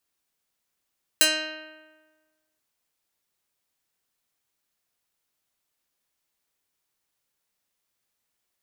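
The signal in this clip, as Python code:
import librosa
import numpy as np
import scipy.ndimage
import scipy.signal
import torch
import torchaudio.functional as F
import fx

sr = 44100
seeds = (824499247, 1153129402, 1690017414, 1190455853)

y = fx.pluck(sr, length_s=1.39, note=63, decay_s=1.4, pick=0.27, brightness='medium')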